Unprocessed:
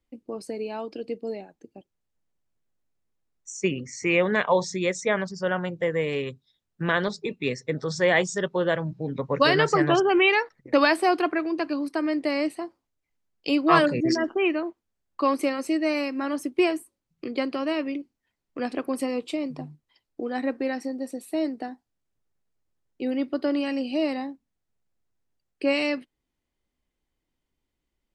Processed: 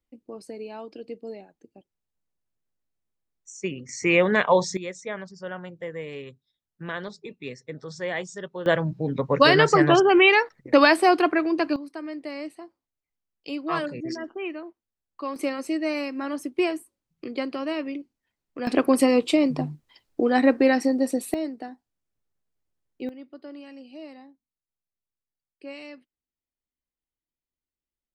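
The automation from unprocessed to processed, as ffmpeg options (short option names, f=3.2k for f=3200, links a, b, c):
-af "asetnsamples=n=441:p=0,asendcmd='3.89 volume volume 2.5dB;4.77 volume volume -9dB;8.66 volume volume 3.5dB;11.76 volume volume -9dB;15.36 volume volume -2dB;18.67 volume volume 9dB;21.34 volume volume -3dB;23.09 volume volume -16dB',volume=-5dB"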